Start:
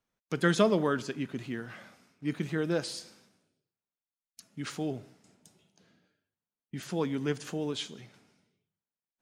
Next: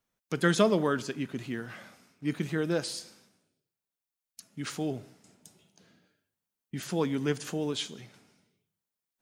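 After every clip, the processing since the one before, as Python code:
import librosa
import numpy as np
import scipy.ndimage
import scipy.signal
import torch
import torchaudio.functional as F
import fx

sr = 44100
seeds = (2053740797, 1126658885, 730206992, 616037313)

y = fx.high_shelf(x, sr, hz=7800.0, db=6.0)
y = fx.rider(y, sr, range_db=3, speed_s=2.0)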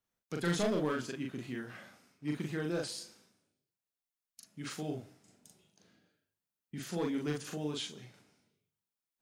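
y = np.clip(x, -10.0 ** (-21.5 / 20.0), 10.0 ** (-21.5 / 20.0))
y = fx.doubler(y, sr, ms=40.0, db=-2.0)
y = y * librosa.db_to_amplitude(-7.0)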